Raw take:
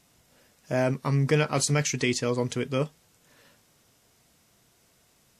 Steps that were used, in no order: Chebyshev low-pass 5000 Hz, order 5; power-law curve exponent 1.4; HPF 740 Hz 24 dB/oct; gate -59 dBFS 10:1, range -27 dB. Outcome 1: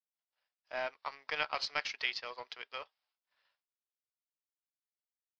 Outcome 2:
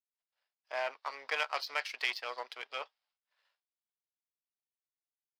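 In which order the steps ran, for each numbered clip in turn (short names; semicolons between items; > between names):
gate > HPF > power-law curve > Chebyshev low-pass; gate > Chebyshev low-pass > power-law curve > HPF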